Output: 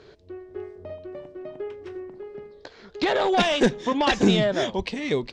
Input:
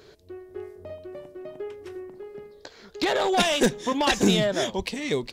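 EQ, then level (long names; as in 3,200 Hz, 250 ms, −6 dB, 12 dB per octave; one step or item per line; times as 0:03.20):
high-frequency loss of the air 120 metres
+2.0 dB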